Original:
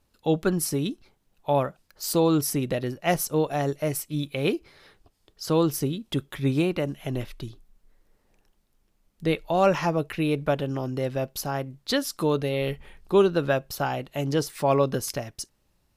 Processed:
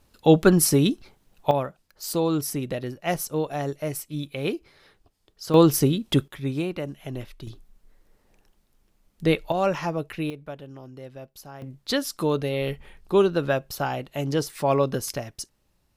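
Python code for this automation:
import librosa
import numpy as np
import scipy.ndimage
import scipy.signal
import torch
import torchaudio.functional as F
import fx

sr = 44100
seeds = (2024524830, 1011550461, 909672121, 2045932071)

y = fx.gain(x, sr, db=fx.steps((0.0, 7.5), (1.51, -2.5), (5.54, 6.5), (6.28, -4.0), (7.47, 3.5), (9.52, -3.0), (10.3, -13.0), (11.62, 0.0)))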